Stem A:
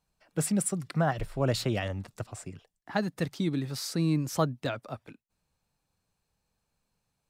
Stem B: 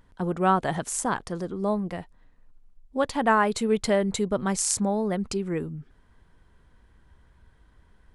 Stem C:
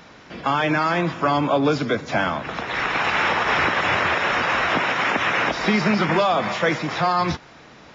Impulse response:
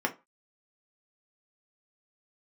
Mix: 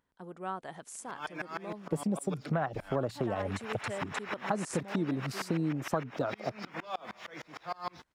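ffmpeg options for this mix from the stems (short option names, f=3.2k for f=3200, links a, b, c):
-filter_complex "[0:a]acontrast=88,afwtdn=0.0501,adelay=1550,volume=1dB[a];[1:a]volume=-15dB[b];[2:a]aeval=exprs='sgn(val(0))*max(abs(val(0))-0.00596,0)':c=same,aeval=exprs='val(0)*pow(10,-31*if(lt(mod(-6.5*n/s,1),2*abs(-6.5)/1000),1-mod(-6.5*n/s,1)/(2*abs(-6.5)/1000),(mod(-6.5*n/s,1)-2*abs(-6.5)/1000)/(1-2*abs(-6.5)/1000))/20)':c=same,adelay=650,volume=-10.5dB[c];[a][b][c]amix=inputs=3:normalize=0,highpass=f=280:p=1,acompressor=threshold=-28dB:ratio=6"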